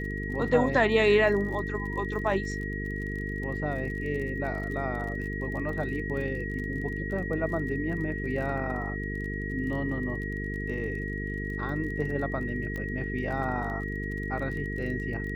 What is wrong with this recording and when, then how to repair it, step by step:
buzz 50 Hz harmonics 9 -34 dBFS
crackle 31/s -37 dBFS
tone 1900 Hz -36 dBFS
12.76 pop -23 dBFS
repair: de-click; notch 1900 Hz, Q 30; de-hum 50 Hz, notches 9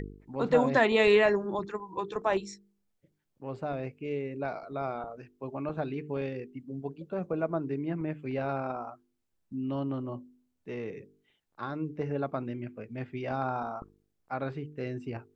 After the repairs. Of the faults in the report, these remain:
none

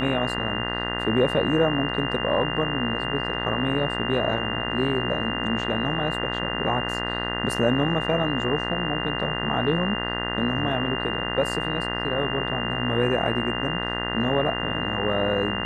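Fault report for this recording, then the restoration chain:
buzz 60 Hz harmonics 34 -30 dBFS
tone 2800 Hz -30 dBFS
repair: notch 2800 Hz, Q 30; de-hum 60 Hz, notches 34

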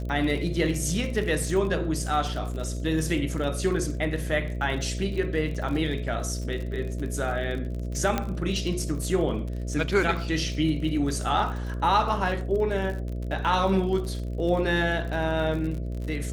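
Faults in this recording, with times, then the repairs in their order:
buzz 60 Hz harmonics 11 -31 dBFS
crackle 43/s -33 dBFS
8.18 pop -11 dBFS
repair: de-click; de-hum 60 Hz, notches 11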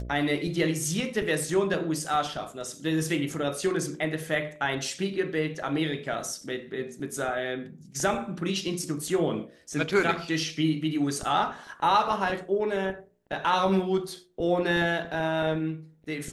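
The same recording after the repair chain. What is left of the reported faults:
none

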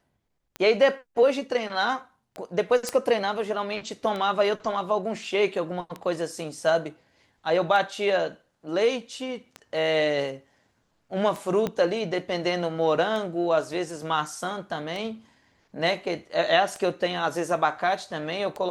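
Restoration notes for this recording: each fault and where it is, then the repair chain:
tick 33 1/3 rpm -20 dBFS
2.89 pop -12 dBFS
11.67 pop -14 dBFS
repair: de-click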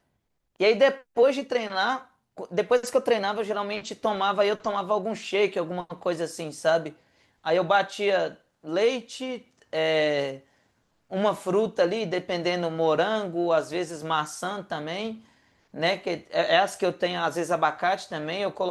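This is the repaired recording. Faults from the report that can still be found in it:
11.67 pop

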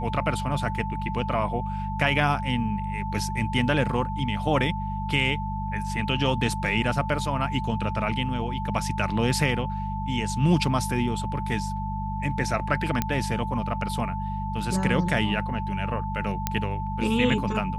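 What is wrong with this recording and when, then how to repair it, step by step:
hum 50 Hz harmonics 4 -31 dBFS
tone 880 Hz -32 dBFS
13.02 pop -9 dBFS
16.47 pop -8 dBFS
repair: de-click; notch 880 Hz, Q 30; de-hum 50 Hz, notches 4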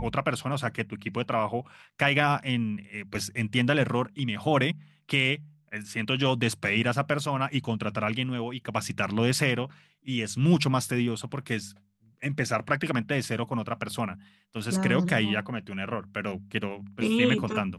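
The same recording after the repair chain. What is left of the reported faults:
none

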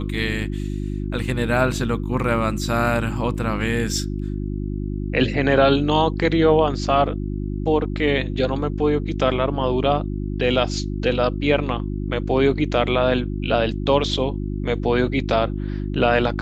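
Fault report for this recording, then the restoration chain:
hum 50 Hz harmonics 7 -26 dBFS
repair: de-hum 50 Hz, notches 7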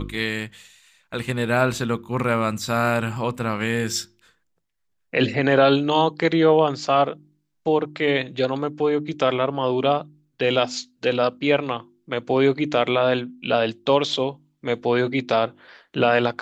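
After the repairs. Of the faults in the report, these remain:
none

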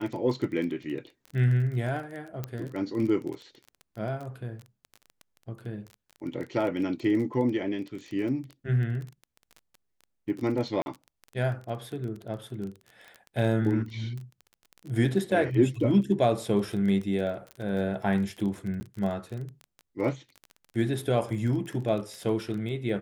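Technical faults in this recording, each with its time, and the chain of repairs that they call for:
crackle 20/s -34 dBFS
2.44 pop -19 dBFS
10.82–10.86 gap 41 ms
17.51 pop -26 dBFS
18.8–18.81 gap 10 ms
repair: de-click; interpolate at 10.82, 41 ms; interpolate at 18.8, 10 ms

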